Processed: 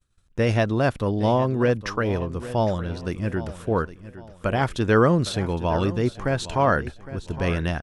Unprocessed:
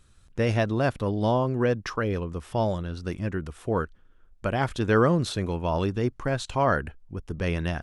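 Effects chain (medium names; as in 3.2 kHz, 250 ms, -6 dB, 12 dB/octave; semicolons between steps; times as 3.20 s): expander -46 dBFS; feedback delay 811 ms, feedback 34%, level -15 dB; trim +3 dB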